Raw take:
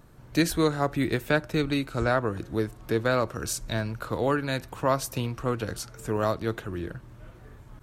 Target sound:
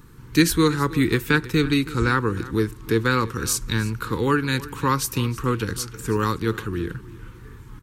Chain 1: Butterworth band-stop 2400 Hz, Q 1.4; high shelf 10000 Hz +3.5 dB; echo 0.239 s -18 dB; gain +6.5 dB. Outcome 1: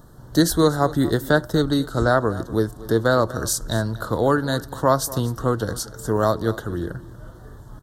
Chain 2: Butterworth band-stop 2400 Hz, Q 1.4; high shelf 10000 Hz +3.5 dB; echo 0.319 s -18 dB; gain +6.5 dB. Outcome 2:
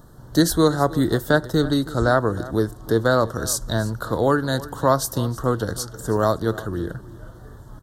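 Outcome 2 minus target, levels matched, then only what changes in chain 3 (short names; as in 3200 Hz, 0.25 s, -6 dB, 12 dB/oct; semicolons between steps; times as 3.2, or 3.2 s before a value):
2000 Hz band -4.0 dB
change: Butterworth band-stop 650 Hz, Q 1.4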